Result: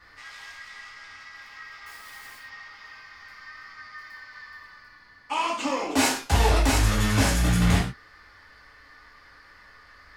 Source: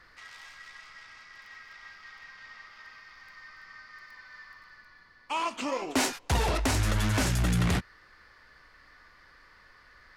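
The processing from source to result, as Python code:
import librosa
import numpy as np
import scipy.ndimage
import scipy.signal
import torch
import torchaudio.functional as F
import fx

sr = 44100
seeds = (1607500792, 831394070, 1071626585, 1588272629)

y = fx.quant_companded(x, sr, bits=4, at=(1.86, 2.37))
y = fx.rev_gated(y, sr, seeds[0], gate_ms=150, shape='falling', drr_db=-5.5)
y = y * librosa.db_to_amplitude(-1.5)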